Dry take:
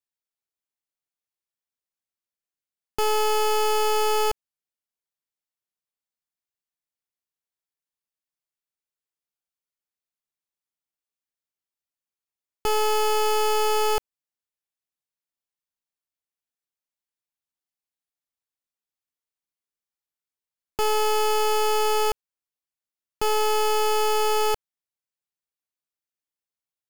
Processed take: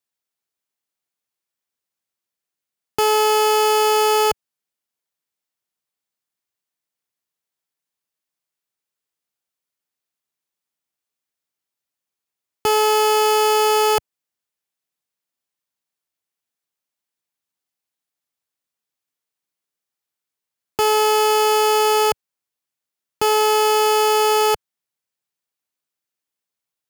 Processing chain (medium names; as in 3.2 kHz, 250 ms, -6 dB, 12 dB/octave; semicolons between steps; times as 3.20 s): high-pass 89 Hz; trim +6.5 dB